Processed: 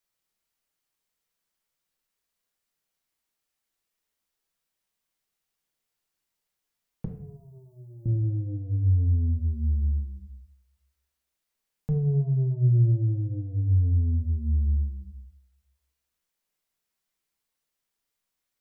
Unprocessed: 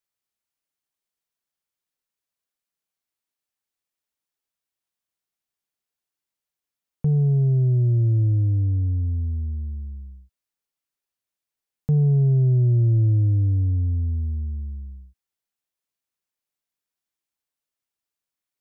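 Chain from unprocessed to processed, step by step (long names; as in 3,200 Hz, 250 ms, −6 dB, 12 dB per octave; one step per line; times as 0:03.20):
0:07.05–0:08.06: first difference
brickwall limiter −25 dBFS, peak gain reduction 10 dB
convolution reverb RT60 0.55 s, pre-delay 4 ms, DRR 2.5 dB
level +3 dB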